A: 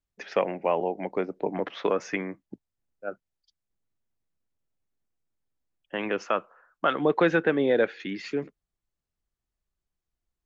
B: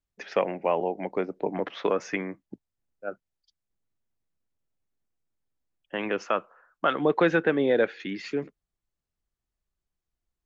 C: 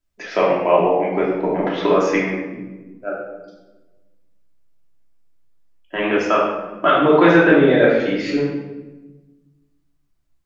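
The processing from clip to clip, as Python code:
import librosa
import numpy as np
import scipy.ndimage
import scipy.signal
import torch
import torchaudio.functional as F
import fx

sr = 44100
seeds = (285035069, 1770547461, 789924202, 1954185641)

y1 = x
y2 = fx.hum_notches(y1, sr, base_hz=50, count=4)
y2 = fx.room_shoebox(y2, sr, seeds[0], volume_m3=620.0, walls='mixed', distance_m=2.9)
y2 = y2 * 10.0 ** (3.5 / 20.0)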